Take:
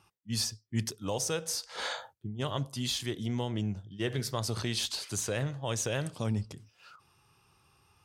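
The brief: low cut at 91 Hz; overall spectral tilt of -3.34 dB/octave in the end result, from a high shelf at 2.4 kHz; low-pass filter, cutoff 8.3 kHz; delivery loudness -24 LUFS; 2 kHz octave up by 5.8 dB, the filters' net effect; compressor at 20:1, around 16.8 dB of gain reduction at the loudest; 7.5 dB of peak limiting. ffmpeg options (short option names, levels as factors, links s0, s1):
-af "highpass=91,lowpass=8300,equalizer=f=2000:t=o:g=5.5,highshelf=f=2400:g=4,acompressor=threshold=0.00794:ratio=20,volume=15.8,alimiter=limit=0.224:level=0:latency=1"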